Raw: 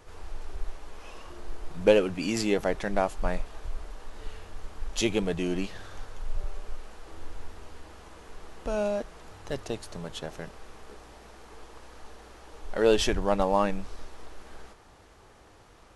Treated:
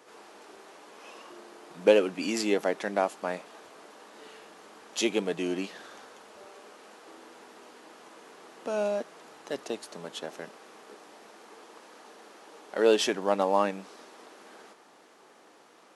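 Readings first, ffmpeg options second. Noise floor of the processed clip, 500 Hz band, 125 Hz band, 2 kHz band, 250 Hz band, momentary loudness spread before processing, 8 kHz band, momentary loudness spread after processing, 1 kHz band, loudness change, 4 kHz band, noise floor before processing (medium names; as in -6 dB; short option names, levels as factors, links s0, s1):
-57 dBFS, 0.0 dB, -9.5 dB, 0.0 dB, -1.5 dB, 23 LU, 0.0 dB, 24 LU, 0.0 dB, 0.0 dB, 0.0 dB, -55 dBFS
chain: -af "highpass=f=220:w=0.5412,highpass=f=220:w=1.3066"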